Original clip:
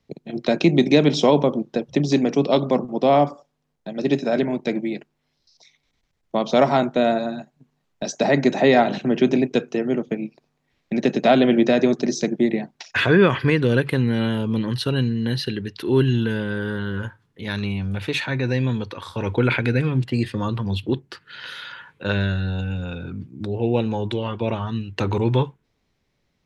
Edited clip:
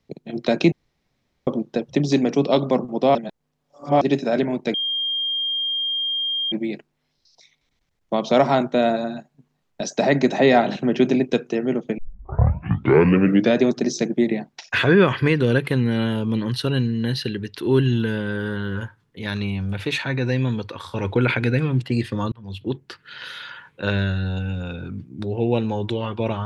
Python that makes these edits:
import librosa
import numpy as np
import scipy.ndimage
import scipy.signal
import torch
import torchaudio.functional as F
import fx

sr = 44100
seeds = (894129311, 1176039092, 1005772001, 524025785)

y = fx.edit(x, sr, fx.room_tone_fill(start_s=0.72, length_s=0.75),
    fx.reverse_span(start_s=3.15, length_s=0.86),
    fx.insert_tone(at_s=4.74, length_s=1.78, hz=3210.0, db=-21.0),
    fx.tape_start(start_s=10.2, length_s=1.6),
    fx.fade_in_span(start_s=20.54, length_s=0.54), tone=tone)